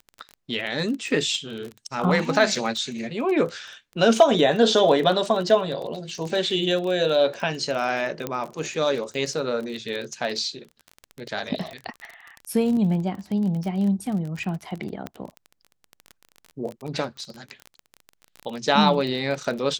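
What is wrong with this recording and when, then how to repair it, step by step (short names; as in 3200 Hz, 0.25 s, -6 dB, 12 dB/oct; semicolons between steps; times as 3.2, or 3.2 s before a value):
crackle 25/s -29 dBFS
8.27 pop -12 dBFS
15.07 pop -18 dBFS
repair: de-click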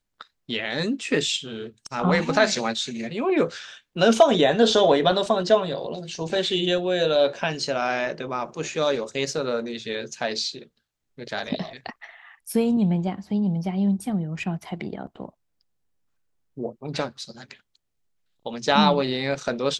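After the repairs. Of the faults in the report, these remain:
15.07 pop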